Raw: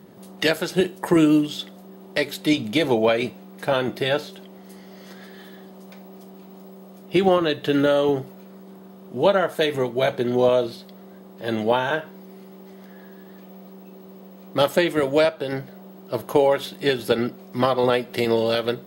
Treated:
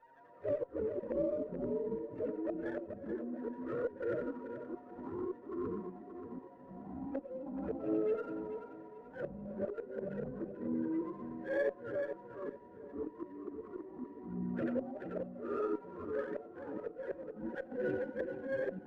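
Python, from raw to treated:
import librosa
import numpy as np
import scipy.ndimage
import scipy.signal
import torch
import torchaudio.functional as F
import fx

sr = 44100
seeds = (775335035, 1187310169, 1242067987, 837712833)

y = fx.octave_mirror(x, sr, pivot_hz=430.0)
y = fx.low_shelf(y, sr, hz=400.0, db=-10.0)
y = fx.env_flanger(y, sr, rest_ms=7.9, full_db=-17.5)
y = fx.echo_banded(y, sr, ms=89, feedback_pct=40, hz=1300.0, wet_db=-5.5)
y = fx.env_phaser(y, sr, low_hz=530.0, high_hz=2500.0, full_db=-16.0)
y = fx.vowel_filter(y, sr, vowel='e')
y = fx.small_body(y, sr, hz=(570.0, 940.0), ring_ms=90, db=16)
y = fx.gate_flip(y, sr, shuts_db=-34.0, range_db=-27)
y = fx.echo_feedback(y, sr, ms=434, feedback_pct=30, wet_db=-10)
y = fx.transient(y, sr, attack_db=-8, sustain_db=0)
y = fx.echo_pitch(y, sr, ms=147, semitones=-5, count=3, db_per_echo=-3.0)
y = fx.running_max(y, sr, window=3)
y = F.gain(torch.from_numpy(y), 13.5).numpy()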